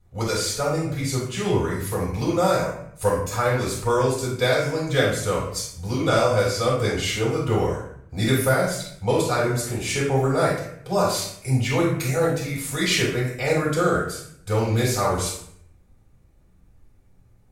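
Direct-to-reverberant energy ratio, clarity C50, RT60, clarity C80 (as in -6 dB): -7.5 dB, 1.5 dB, 0.70 s, 5.5 dB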